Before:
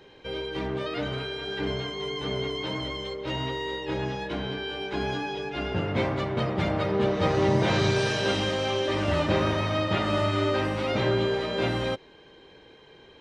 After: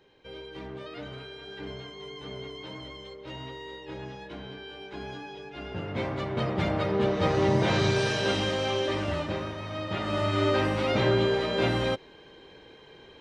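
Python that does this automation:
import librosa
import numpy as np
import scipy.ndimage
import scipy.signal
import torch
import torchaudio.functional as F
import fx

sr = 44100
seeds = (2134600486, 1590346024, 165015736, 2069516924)

y = fx.gain(x, sr, db=fx.line((5.5, -9.5), (6.49, -1.0), (8.85, -1.0), (9.55, -11.0), (10.48, 1.0)))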